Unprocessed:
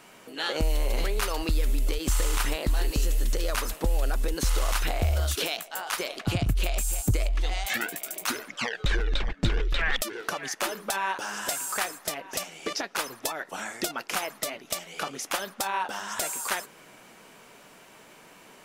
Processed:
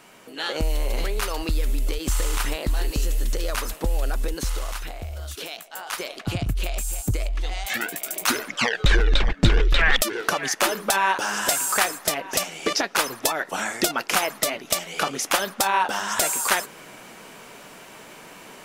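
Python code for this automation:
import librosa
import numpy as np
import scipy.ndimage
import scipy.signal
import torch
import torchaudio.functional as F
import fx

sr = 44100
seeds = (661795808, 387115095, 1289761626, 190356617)

y = fx.gain(x, sr, db=fx.line((4.26, 1.5), (5.09, -9.5), (5.92, 0.0), (7.56, 0.0), (8.36, 8.0)))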